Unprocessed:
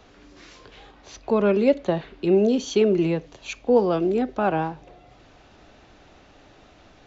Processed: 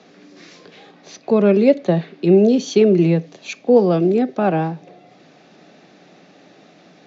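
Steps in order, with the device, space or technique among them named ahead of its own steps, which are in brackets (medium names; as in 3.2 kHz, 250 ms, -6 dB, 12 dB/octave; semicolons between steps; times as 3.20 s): television speaker (cabinet simulation 170–6700 Hz, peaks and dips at 170 Hz +9 dB, 970 Hz -8 dB, 1.4 kHz -5 dB, 3 kHz -5 dB); trim +5.5 dB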